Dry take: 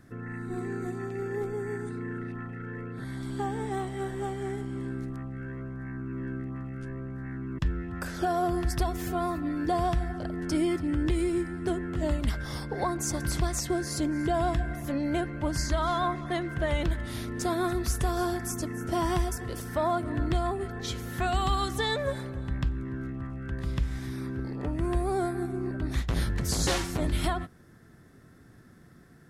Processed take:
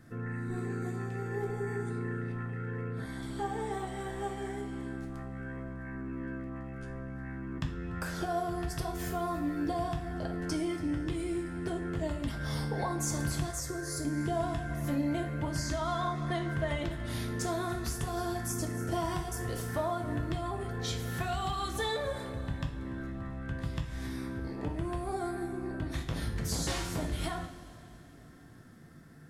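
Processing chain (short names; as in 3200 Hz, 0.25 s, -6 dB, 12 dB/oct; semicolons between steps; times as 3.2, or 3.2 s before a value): compressor, threshold -29 dBFS, peak gain reduction 8 dB; 13.5–14.05 fixed phaser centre 800 Hz, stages 6; two-slope reverb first 0.43 s, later 3.6 s, from -18 dB, DRR 2 dB; gain -2 dB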